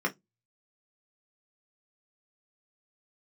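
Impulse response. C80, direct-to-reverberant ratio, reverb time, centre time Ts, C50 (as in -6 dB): 36.5 dB, -0.5 dB, 0.15 s, 8 ms, 22.5 dB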